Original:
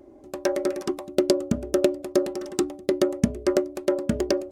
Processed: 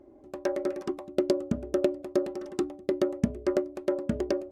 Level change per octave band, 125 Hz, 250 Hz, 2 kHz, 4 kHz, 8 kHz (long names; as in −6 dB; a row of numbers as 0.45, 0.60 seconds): −4.5, −4.5, −6.5, −10.5, −13.0 decibels